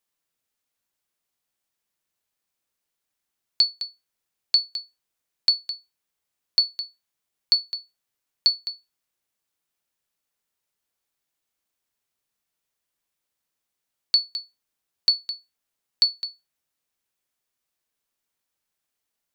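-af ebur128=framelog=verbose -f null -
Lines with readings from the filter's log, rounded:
Integrated loudness:
  I:         -23.0 LUFS
  Threshold: -34.6 LUFS
Loudness range:
  LRA:         4.8 LU
  Threshold: -47.7 LUFS
  LRA low:   -30.8 LUFS
  LRA high:  -26.0 LUFS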